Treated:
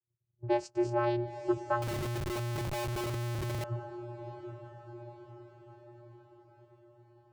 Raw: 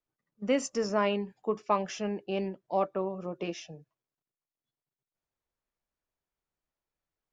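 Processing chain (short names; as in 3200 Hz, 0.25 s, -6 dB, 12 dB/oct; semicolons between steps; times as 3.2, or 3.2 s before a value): low-pass opened by the level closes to 340 Hz, open at -26 dBFS; vocoder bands 8, square 119 Hz; diffused feedback echo 0.908 s, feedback 51%, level -9 dB; 1.82–3.64 Schmitt trigger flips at -38.5 dBFS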